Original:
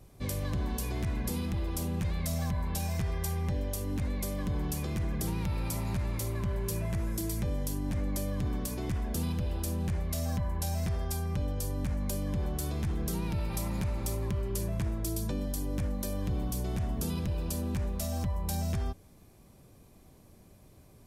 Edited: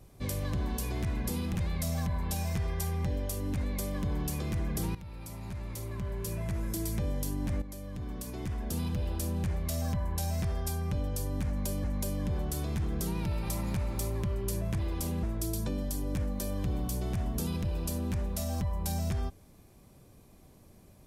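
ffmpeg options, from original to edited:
ffmpeg -i in.wav -filter_complex "[0:a]asplit=7[link_01][link_02][link_03][link_04][link_05][link_06][link_07];[link_01]atrim=end=1.552[link_08];[link_02]atrim=start=1.988:end=5.39,asetpts=PTS-STARTPTS,afade=type=out:start_time=3.398:duration=0.004:curve=hsin:silence=0.188365[link_09];[link_03]atrim=start=5.39:end=8.06,asetpts=PTS-STARTPTS,afade=type=in:duration=1.93:silence=0.188365,afade=type=out:start_time=2.666:duration=0.004:curve=hsin:silence=0.251189[link_10];[link_04]atrim=start=8.06:end=12.282,asetpts=PTS-STARTPTS,afade=type=in:duration=1.38:silence=0.251189[link_11];[link_05]atrim=start=11.908:end=14.862[link_12];[link_06]atrim=start=1.548:end=1.992[link_13];[link_07]atrim=start=14.858[link_14];[link_09][link_10][link_11]concat=n=3:v=0:a=1[link_15];[link_08][link_15]acrossfade=duration=0.004:curve1=hsin:curve2=hsin[link_16];[link_16][link_12]acrossfade=duration=0.004:curve1=hsin:curve2=hsin[link_17];[link_17][link_13]acrossfade=duration=0.004:curve1=hsin:curve2=hsin[link_18];[link_18][link_14]acrossfade=duration=0.004:curve1=hsin:curve2=hsin" out.wav

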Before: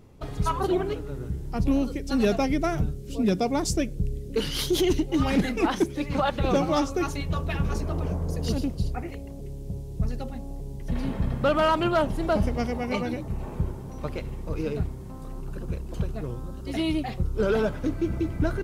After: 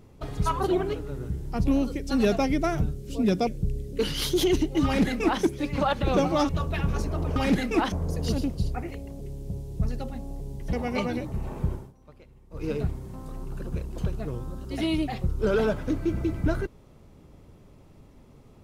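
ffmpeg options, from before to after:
ffmpeg -i in.wav -filter_complex "[0:a]asplit=8[link_01][link_02][link_03][link_04][link_05][link_06][link_07][link_08];[link_01]atrim=end=3.472[link_09];[link_02]atrim=start=3.838:end=6.862[link_10];[link_03]atrim=start=7.248:end=8.122[link_11];[link_04]atrim=start=5.218:end=5.782[link_12];[link_05]atrim=start=8.118:end=10.932[link_13];[link_06]atrim=start=12.688:end=13.89,asetpts=PTS-STARTPTS,afade=type=out:start_time=1.012:duration=0.19:silence=0.105925[link_14];[link_07]atrim=start=13.89:end=14.46,asetpts=PTS-STARTPTS,volume=-19.5dB[link_15];[link_08]atrim=start=14.46,asetpts=PTS-STARTPTS,afade=type=in:duration=0.19:silence=0.105925[link_16];[link_09][link_10]acrossfade=duration=0.004:curve1=hsin:curve2=hsin[link_17];[link_17][link_11]acrossfade=duration=0.004:curve1=hsin:curve2=hsin[link_18];[link_18][link_12]acrossfade=duration=0.004:curve1=hsin:curve2=hsin[link_19];[link_19][link_13]acrossfade=duration=0.004:curve1=hsin:curve2=hsin[link_20];[link_14][link_15][link_16]concat=n=3:v=0:a=1[link_21];[link_20][link_21]acrossfade=duration=0.004:curve1=hsin:curve2=hsin" out.wav

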